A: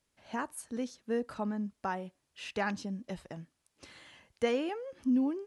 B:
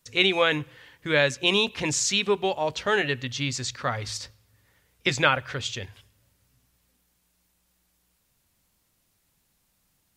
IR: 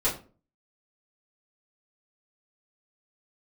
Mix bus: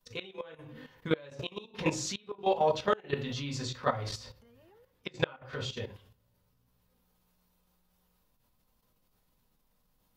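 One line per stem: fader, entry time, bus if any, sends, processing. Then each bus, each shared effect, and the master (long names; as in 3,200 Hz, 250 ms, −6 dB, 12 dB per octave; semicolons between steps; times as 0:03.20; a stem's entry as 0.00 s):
−6.0 dB, 0.00 s, send −23 dB, downward compressor, threshold −41 dBFS, peak gain reduction 16 dB; barber-pole flanger 3.4 ms +0.51 Hz
−5.0 dB, 0.00 s, send −5 dB, no processing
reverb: on, RT60 0.40 s, pre-delay 4 ms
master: gate with flip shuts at −10 dBFS, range −25 dB; octave-band graphic EQ 1,000/2,000/8,000 Hz +3/−6/−10 dB; output level in coarse steps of 12 dB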